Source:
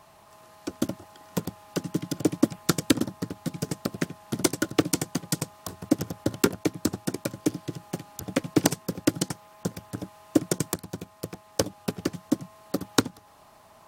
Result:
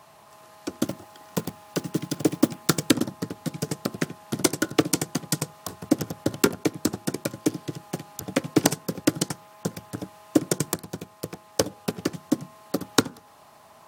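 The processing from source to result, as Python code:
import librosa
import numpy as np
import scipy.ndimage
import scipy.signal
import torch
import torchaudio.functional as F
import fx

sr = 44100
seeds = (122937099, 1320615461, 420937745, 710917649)

y = fx.block_float(x, sr, bits=5, at=(0.87, 2.9))
y = scipy.signal.sosfilt(scipy.signal.butter(2, 71.0, 'highpass', fs=sr, output='sos'), y)
y = fx.low_shelf(y, sr, hz=190.0, db=-3.5)
y = fx.rev_fdn(y, sr, rt60_s=0.47, lf_ratio=0.95, hf_ratio=0.25, size_ms=40.0, drr_db=18.0)
y = y * 10.0 ** (2.5 / 20.0)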